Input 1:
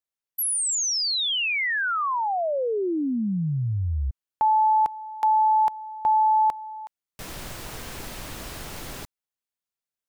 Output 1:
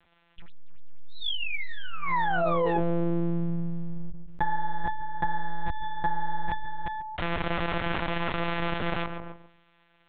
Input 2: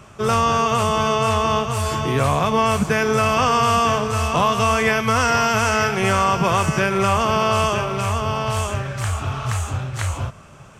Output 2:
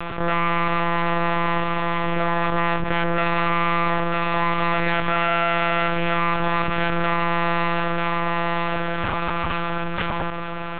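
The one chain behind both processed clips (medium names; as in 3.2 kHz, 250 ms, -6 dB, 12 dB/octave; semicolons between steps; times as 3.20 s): low-pass 2.3 kHz 12 dB/octave; peaking EQ 100 Hz -13.5 dB 1.5 oct; half-wave rectifier; short-mantissa float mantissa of 6-bit; filtered feedback delay 142 ms, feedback 22%, low-pass 1.6 kHz, level -20 dB; monotone LPC vocoder at 8 kHz 170 Hz; level flattener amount 70%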